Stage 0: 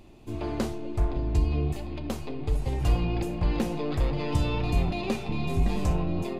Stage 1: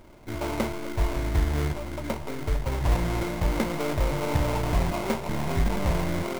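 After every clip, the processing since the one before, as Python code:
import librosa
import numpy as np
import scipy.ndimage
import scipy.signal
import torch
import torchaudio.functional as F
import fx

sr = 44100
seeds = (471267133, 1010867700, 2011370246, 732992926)

y = fx.sample_hold(x, sr, seeds[0], rate_hz=1800.0, jitter_pct=20)
y = fx.small_body(y, sr, hz=(600.0, 930.0, 2100.0), ring_ms=20, db=8)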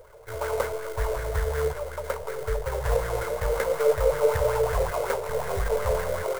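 y = fx.curve_eq(x, sr, hz=(110.0, 300.0, 450.0, 710.0, 1500.0, 2300.0, 5400.0, 8800.0), db=(0, -26, 13, -1, 3, -3, 2, 7))
y = fx.bell_lfo(y, sr, hz=5.4, low_hz=470.0, high_hz=1800.0, db=10)
y = y * 10.0 ** (-4.0 / 20.0)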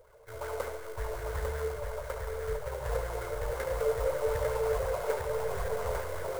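y = fx.echo_multitap(x, sr, ms=(72, 141, 849), db=(-7.0, -13.0, -3.5))
y = y * 10.0 ** (-9.0 / 20.0)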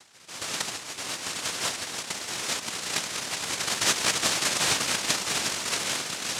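y = fx.noise_vocoder(x, sr, seeds[1], bands=1)
y = y * 10.0 ** (4.5 / 20.0)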